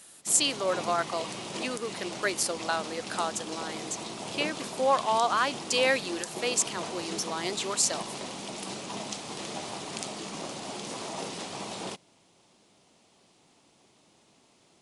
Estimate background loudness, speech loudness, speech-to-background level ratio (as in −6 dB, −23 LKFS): −37.0 LKFS, −29.0 LKFS, 8.0 dB